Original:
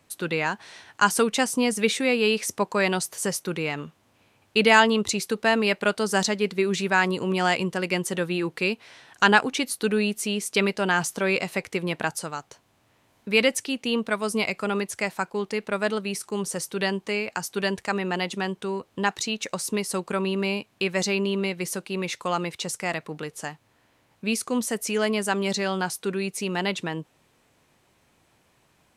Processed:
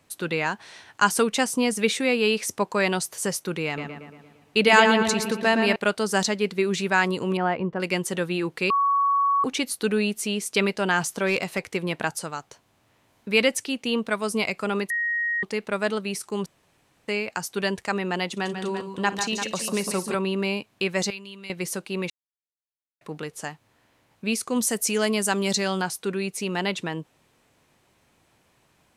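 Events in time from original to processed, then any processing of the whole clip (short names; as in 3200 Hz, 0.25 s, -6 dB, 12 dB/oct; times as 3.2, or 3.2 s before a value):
3.66–5.76 darkening echo 0.115 s, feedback 58%, low-pass 3600 Hz, level -5.5 dB
7.37–7.8 LPF 1300 Hz
8.7–9.44 bleep 1120 Hz -18 dBFS
11.24–11.95 hard clip -16 dBFS
14.9–15.43 bleep 1880 Hz -22.5 dBFS
16.46–17.08 room tone
18.31–20.15 tapped delay 55/144/155/181/342 ms -19/-8/-17.5/-15/-9 dB
21.1–21.5 passive tone stack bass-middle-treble 5-5-5
22.1–23.01 mute
24.56–25.82 tone controls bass +2 dB, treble +7 dB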